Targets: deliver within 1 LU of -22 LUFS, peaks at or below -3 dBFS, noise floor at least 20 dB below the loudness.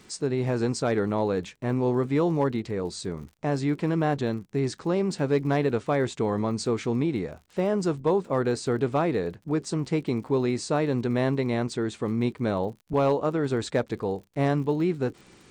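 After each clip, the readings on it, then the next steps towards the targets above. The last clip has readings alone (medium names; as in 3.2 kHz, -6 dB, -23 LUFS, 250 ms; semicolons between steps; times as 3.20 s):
tick rate 42 per s; loudness -27.0 LUFS; peak level -14.0 dBFS; loudness target -22.0 LUFS
-> de-click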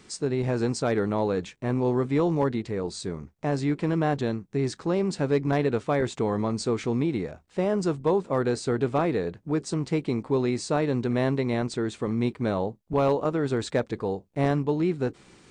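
tick rate 0 per s; loudness -27.0 LUFS; peak level -10.5 dBFS; loudness target -22.0 LUFS
-> trim +5 dB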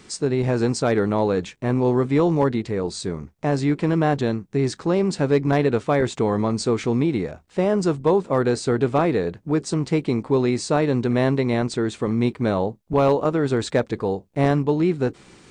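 loudness -22.0 LUFS; peak level -5.5 dBFS; noise floor -54 dBFS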